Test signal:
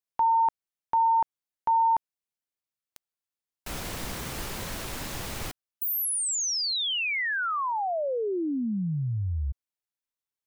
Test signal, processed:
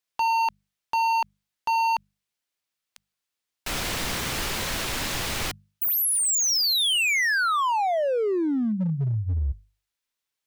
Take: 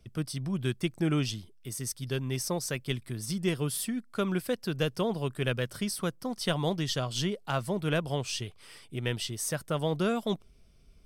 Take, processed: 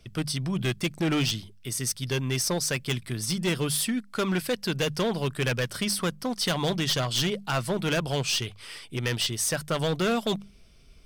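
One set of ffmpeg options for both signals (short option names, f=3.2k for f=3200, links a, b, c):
-af "equalizer=f=3.1k:w=0.44:g=6,bandreject=f=50:t=h:w=6,bandreject=f=100:t=h:w=6,bandreject=f=150:t=h:w=6,bandreject=f=200:t=h:w=6,volume=26dB,asoftclip=hard,volume=-26dB,volume=4.5dB"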